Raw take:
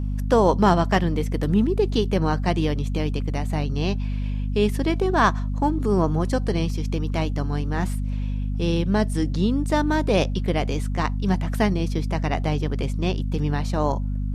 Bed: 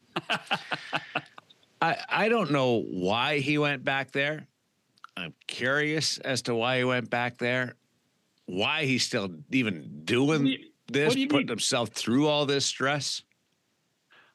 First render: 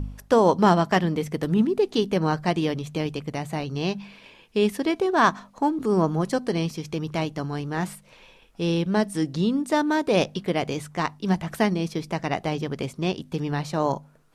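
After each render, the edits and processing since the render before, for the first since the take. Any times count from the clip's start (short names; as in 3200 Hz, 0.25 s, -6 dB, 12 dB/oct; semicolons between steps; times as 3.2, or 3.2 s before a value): de-hum 50 Hz, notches 5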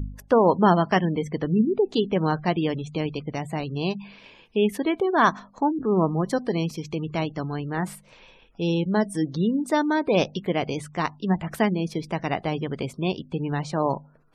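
spectral gate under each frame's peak -30 dB strong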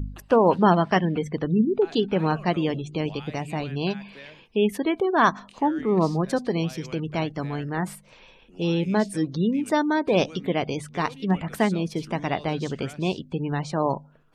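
add bed -17.5 dB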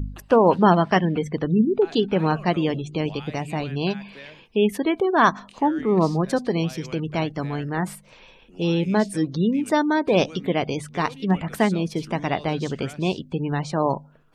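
gain +2 dB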